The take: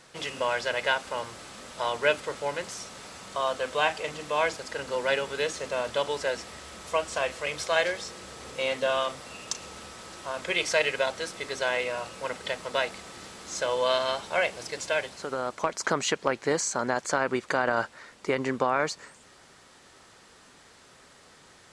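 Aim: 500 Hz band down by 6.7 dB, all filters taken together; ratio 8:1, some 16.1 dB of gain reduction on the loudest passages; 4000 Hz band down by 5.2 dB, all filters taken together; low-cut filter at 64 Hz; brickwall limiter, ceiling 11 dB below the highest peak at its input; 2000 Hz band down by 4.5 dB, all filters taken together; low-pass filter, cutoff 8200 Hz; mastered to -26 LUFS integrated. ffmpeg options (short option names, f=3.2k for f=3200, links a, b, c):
-af "highpass=64,lowpass=8.2k,equalizer=f=500:t=o:g=-8,equalizer=f=2k:t=o:g=-4.5,equalizer=f=4k:t=o:g=-5,acompressor=threshold=-41dB:ratio=8,volume=20dB,alimiter=limit=-13dB:level=0:latency=1"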